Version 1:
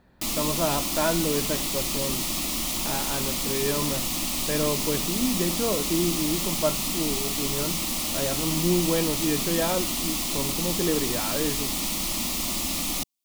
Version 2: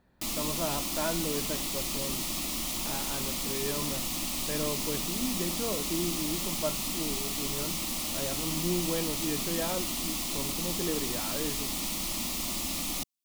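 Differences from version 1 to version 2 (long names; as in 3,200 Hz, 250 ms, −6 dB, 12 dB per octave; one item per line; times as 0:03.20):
speech −7.5 dB
background −5.0 dB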